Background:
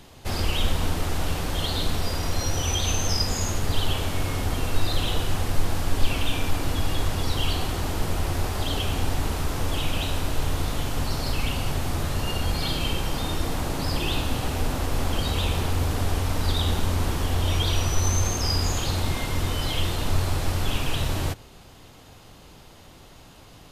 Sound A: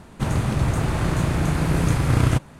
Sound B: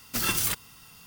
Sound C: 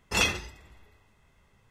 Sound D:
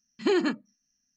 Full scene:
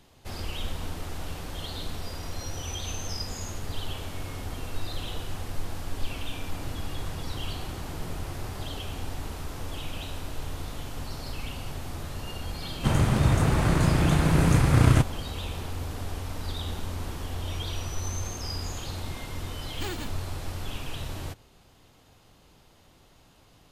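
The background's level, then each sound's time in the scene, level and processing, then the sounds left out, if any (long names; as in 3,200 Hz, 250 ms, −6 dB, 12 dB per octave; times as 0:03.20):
background −9.5 dB
0:06.32: mix in A −13 dB + downward compressor, threshold −27 dBFS
0:12.64: mix in A −0.5 dB
0:19.55: mix in D −13 dB + spectral envelope flattened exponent 0.3
not used: B, C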